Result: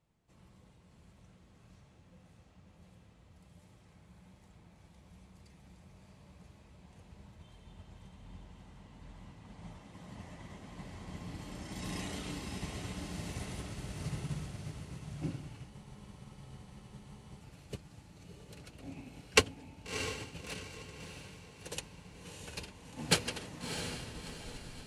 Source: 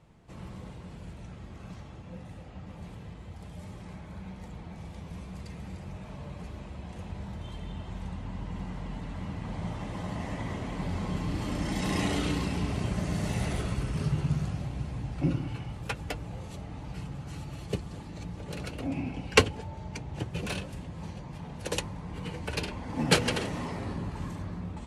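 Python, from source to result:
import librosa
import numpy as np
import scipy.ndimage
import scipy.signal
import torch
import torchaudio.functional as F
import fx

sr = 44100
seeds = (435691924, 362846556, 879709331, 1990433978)

y = fx.tape_stop_end(x, sr, length_s=1.18)
y = fx.high_shelf(y, sr, hz=3500.0, db=8.0)
y = fx.echo_diffused(y, sr, ms=658, feedback_pct=56, wet_db=-3.5)
y = fx.spec_freeze(y, sr, seeds[0], at_s=15.72, hold_s=1.69)
y = fx.upward_expand(y, sr, threshold_db=-37.0, expansion=1.5)
y = F.gain(torch.from_numpy(y), -6.0).numpy()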